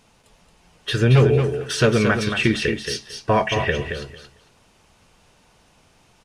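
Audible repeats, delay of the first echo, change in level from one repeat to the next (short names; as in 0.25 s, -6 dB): 2, 0.225 s, -16.0 dB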